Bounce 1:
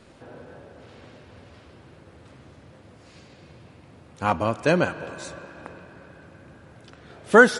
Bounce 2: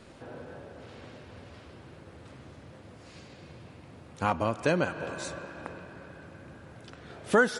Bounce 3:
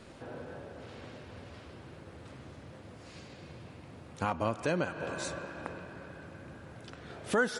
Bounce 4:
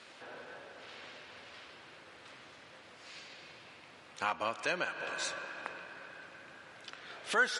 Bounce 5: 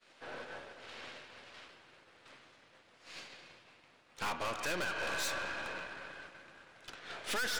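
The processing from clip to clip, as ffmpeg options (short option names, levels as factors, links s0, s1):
-af "acompressor=threshold=0.0501:ratio=2"
-af "alimiter=limit=0.133:level=0:latency=1:release=316"
-af "bandpass=f=3000:t=q:w=0.64:csg=0,volume=1.88"
-af "aeval=exprs='(tanh(126*val(0)+0.55)-tanh(0.55))/126':c=same,agate=range=0.0224:threshold=0.00447:ratio=3:detection=peak,volume=2.66"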